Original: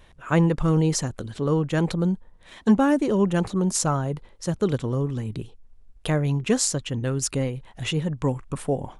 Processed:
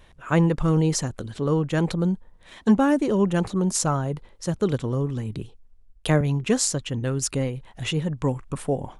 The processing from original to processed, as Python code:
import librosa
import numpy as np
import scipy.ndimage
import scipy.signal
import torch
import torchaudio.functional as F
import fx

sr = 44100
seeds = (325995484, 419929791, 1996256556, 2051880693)

y = fx.band_widen(x, sr, depth_pct=40, at=(5.39, 6.21))